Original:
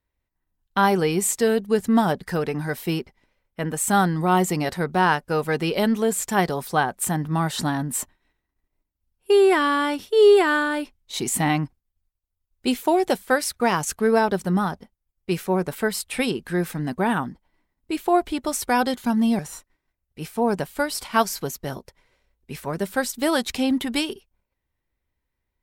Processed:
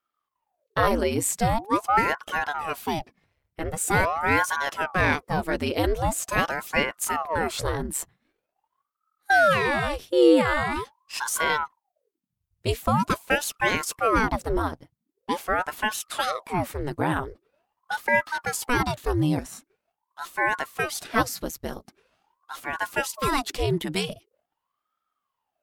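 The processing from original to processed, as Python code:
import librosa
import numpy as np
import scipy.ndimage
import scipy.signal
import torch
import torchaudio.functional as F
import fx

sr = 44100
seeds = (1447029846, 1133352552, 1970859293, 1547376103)

y = fx.ring_lfo(x, sr, carrier_hz=680.0, swing_pct=90, hz=0.44)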